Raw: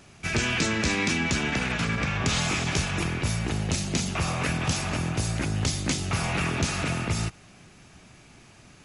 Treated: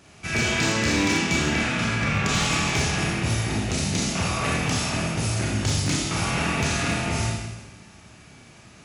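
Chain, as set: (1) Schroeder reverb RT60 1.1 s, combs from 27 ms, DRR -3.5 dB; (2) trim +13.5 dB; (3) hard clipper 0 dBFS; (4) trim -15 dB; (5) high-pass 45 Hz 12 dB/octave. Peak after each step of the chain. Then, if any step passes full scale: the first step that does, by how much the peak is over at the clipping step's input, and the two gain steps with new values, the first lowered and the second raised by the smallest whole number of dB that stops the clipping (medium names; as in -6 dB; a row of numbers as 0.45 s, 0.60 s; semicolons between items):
-7.0 dBFS, +6.5 dBFS, 0.0 dBFS, -15.0 dBFS, -11.5 dBFS; step 2, 6.5 dB; step 2 +6.5 dB, step 4 -8 dB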